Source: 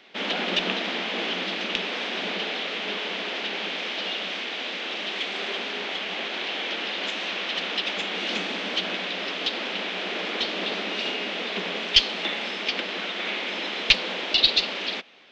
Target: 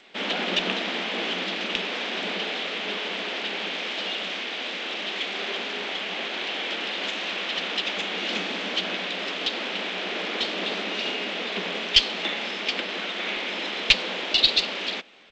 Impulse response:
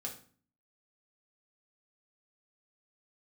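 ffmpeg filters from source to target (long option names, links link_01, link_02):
-filter_complex "[0:a]asplit=2[link_01][link_02];[link_02]adelay=1399,volume=-28dB,highshelf=frequency=4000:gain=-31.5[link_03];[link_01][link_03]amix=inputs=2:normalize=0" -ar 16000 -c:a g722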